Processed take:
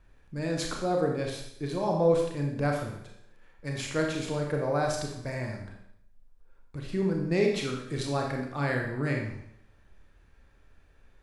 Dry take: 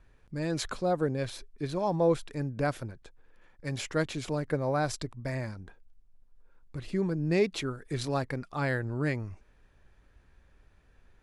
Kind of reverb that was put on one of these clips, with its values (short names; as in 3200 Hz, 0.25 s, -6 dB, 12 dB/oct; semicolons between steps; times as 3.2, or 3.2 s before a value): Schroeder reverb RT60 0.72 s, combs from 28 ms, DRR 0.5 dB; gain -1 dB